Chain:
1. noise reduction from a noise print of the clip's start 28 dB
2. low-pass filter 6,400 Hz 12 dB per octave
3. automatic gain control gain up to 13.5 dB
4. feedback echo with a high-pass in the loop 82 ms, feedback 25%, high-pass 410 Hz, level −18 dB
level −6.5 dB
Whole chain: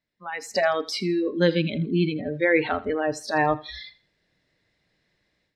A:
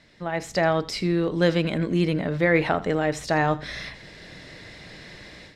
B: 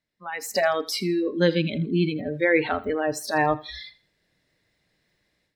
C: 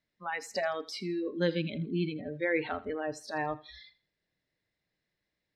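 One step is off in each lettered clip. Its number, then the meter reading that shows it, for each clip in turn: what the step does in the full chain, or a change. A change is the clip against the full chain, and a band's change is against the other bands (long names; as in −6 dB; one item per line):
1, 125 Hz band +3.0 dB
2, 8 kHz band +4.5 dB
3, change in momentary loudness spread −6 LU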